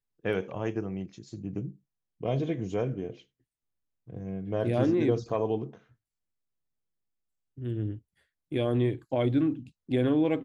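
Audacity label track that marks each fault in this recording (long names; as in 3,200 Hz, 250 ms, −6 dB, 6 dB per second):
5.290000	5.290000	drop-out 4.1 ms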